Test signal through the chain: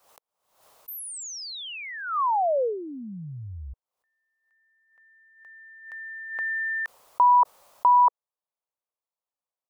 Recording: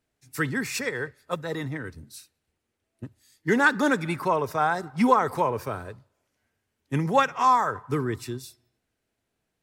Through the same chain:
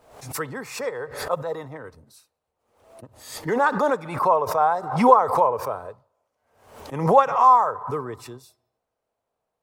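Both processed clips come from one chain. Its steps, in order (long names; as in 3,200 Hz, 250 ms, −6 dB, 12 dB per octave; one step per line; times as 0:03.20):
flat-topped bell 750 Hz +14 dB
background raised ahead of every attack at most 85 dB per second
level −8.5 dB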